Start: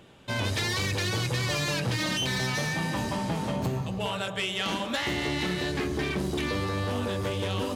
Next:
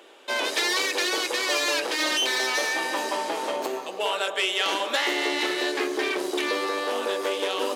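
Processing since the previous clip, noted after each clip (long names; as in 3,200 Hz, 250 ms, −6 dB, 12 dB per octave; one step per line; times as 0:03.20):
Butterworth high-pass 330 Hz 36 dB per octave
level +5.5 dB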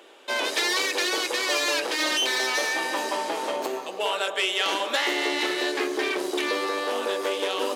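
no processing that can be heard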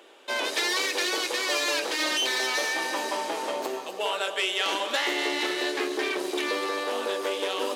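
delay with a high-pass on its return 251 ms, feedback 53%, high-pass 2,900 Hz, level −10 dB
level −2 dB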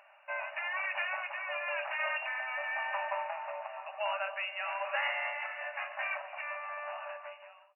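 fade-out on the ending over 1.25 s
amplitude tremolo 0.99 Hz, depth 40%
linear-phase brick-wall band-pass 560–2,900 Hz
level −3.5 dB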